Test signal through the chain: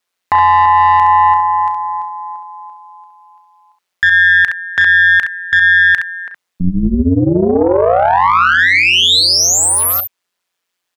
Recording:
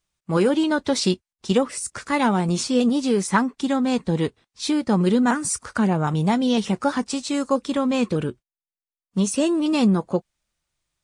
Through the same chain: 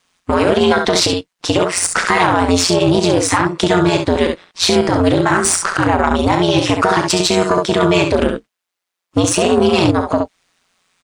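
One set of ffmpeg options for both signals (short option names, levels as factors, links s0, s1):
-filter_complex "[0:a]highpass=66,acompressor=threshold=0.0708:ratio=16,aecho=1:1:34|67:0.299|0.447,aeval=exprs='0.282*(cos(1*acos(clip(val(0)/0.282,-1,1)))-cos(1*PI/2))+0.141*(cos(2*acos(clip(val(0)/0.282,-1,1)))-cos(2*PI/2))+0.00447*(cos(7*acos(clip(val(0)/0.282,-1,1)))-cos(7*PI/2))':c=same,aeval=exprs='val(0)*sin(2*PI*89*n/s)':c=same,asplit=2[s0][s1];[s1]highpass=f=720:p=1,volume=3.55,asoftclip=type=tanh:threshold=0.282[s2];[s0][s2]amix=inputs=2:normalize=0,lowpass=f=3400:p=1,volume=0.501,alimiter=level_in=8.91:limit=0.891:release=50:level=0:latency=1,volume=0.891"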